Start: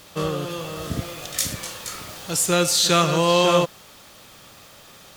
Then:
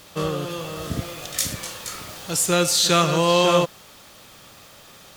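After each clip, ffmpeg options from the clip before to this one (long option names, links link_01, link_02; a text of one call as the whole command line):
ffmpeg -i in.wav -af anull out.wav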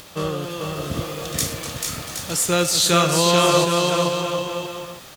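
ffmpeg -i in.wav -af "acompressor=mode=upward:threshold=-38dB:ratio=2.5,aecho=1:1:440|770|1018|1203|1342:0.631|0.398|0.251|0.158|0.1" out.wav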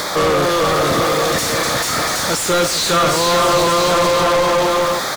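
ffmpeg -i in.wav -filter_complex "[0:a]asuperstop=centerf=2800:order=4:qfactor=2.3,asplit=2[link_01][link_02];[link_02]highpass=frequency=720:poles=1,volume=39dB,asoftclip=type=tanh:threshold=-4dB[link_03];[link_01][link_03]amix=inputs=2:normalize=0,lowpass=frequency=2800:poles=1,volume=-6dB,volume=-3dB" out.wav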